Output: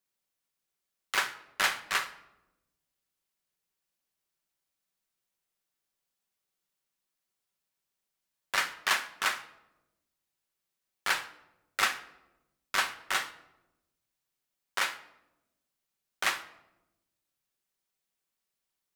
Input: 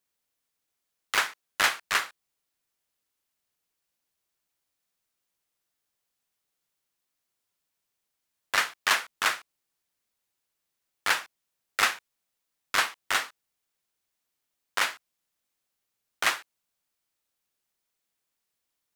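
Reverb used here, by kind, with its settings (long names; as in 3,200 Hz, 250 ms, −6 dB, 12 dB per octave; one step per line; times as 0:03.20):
rectangular room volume 3,500 cubic metres, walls furnished, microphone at 1.1 metres
level −4 dB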